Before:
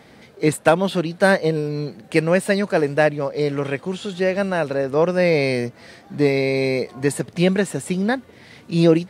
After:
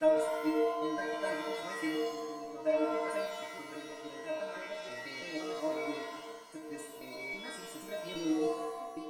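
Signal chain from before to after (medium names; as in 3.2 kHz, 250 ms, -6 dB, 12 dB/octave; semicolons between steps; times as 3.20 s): slices played last to first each 163 ms, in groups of 5; inharmonic resonator 310 Hz, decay 0.49 s, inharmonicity 0.002; pitch-shifted reverb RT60 1.2 s, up +7 st, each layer -2 dB, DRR 3.5 dB; trim -2.5 dB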